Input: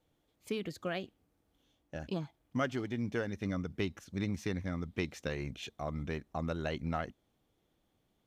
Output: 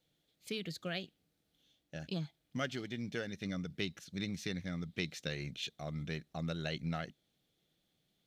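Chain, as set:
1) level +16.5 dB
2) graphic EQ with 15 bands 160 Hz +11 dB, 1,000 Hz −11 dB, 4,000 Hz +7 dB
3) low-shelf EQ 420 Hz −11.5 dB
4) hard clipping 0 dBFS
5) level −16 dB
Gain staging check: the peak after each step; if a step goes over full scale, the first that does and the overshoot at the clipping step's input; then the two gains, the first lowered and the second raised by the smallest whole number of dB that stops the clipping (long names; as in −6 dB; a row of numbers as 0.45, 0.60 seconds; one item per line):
−3.5, −1.5, −5.0, −5.0, −21.0 dBFS
no step passes full scale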